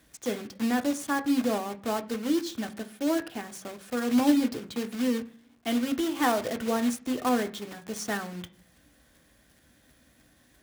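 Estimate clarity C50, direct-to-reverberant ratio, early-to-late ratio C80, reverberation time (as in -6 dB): 17.0 dB, 6.0 dB, 21.5 dB, 0.45 s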